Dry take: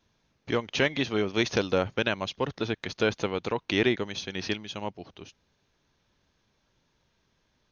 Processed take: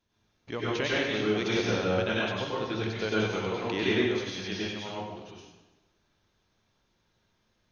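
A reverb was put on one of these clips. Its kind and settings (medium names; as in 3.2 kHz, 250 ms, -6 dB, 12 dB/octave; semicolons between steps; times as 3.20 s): plate-style reverb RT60 1.1 s, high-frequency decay 0.85×, pre-delay 85 ms, DRR -7 dB; trim -8.5 dB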